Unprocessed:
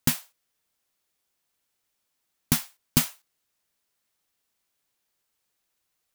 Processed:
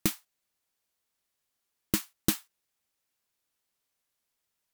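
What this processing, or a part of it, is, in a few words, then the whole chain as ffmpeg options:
nightcore: -af "asetrate=57330,aresample=44100,volume=-3dB"

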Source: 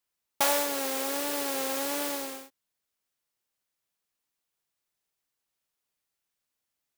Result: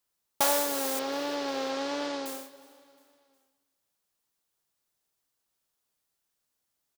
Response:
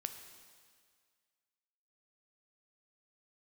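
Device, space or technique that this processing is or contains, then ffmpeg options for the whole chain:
compressed reverb return: -filter_complex "[0:a]equalizer=frequency=2300:width=1.5:gain=-4.5,asettb=1/sr,asplit=3[link_01][link_02][link_03];[link_01]atrim=end=0.994[link_04];[link_02]atrim=start=0.99:end=2.26,asetpts=PTS-STARTPTS,afade=type=in:duration=0.004:curve=qsin,afade=type=out:start_time=1.266:duration=0.004:curve=qsin,lowpass=frequency=5100:width=0.5412,lowpass=frequency=5100:width=1.3066[link_05];[link_03]atrim=start=2.256[link_06];[link_04][link_05]acrossfade=duration=0.004:curve1=hsin:curve2=qsin[link_07];[link_07][link_06]acrossfade=duration=0.004:curve1=qsin:curve2=hsin,asplit=2[link_08][link_09];[1:a]atrim=start_sample=2205[link_10];[link_09][link_10]afir=irnorm=-1:irlink=0,acompressor=threshold=-44dB:ratio=6,volume=-3.5dB[link_11];[link_08][link_11]amix=inputs=2:normalize=0,aecho=1:1:359|718|1077:0.0668|0.0354|0.0188"

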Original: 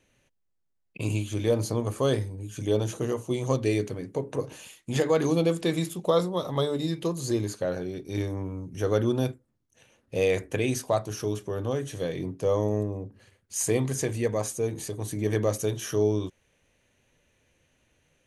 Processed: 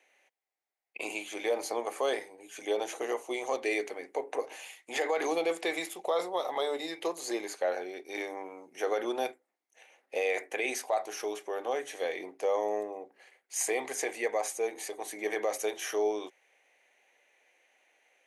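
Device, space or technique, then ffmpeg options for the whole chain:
laptop speaker: -af "highpass=frequency=380:width=0.5412,highpass=frequency=380:width=1.3066,equalizer=frequency=770:width_type=o:width=0.4:gain=12,equalizer=frequency=2100:width_type=o:width=0.54:gain=11.5,alimiter=limit=-17dB:level=0:latency=1:release=31,volume=-3dB"

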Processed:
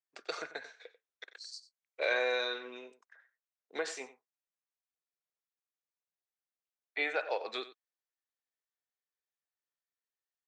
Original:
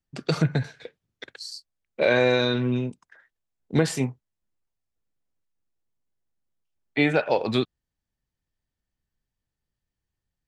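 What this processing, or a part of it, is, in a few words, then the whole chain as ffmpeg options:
phone speaker on a table: -filter_complex "[0:a]asettb=1/sr,asplit=3[link_01][link_02][link_03];[link_01]atrim=end=1.534[link_04];[link_02]atrim=start=1.53:end=2.14,asetpts=PTS-STARTPTS,afade=type=in:duration=0.004:curve=qsin,afade=type=out:start_time=0.606:duration=0.004:curve=qsin,highshelf=frequency=6700:gain=11[link_05];[link_03]atrim=start=2.136[link_06];[link_04][link_05]acrossfade=duration=0.004:curve1=hsin:curve2=qsin[link_07];[link_07][link_06]acrossfade=duration=0.004:curve1=qsin:curve2=hsin,highpass=frequency=500:width=0.5412,highpass=frequency=500:width=1.3066,equalizer=frequency=580:width_type=q:width=4:gain=-5,equalizer=frequency=890:width_type=q:width=4:gain=-5,equalizer=frequency=3000:width_type=q:width=4:gain=-5,equalizer=frequency=4800:width_type=q:width=4:gain=-5,lowpass=frequency=7000:width=0.5412,lowpass=frequency=7000:width=1.3066,aecho=1:1:92:0.168,volume=-6.5dB"

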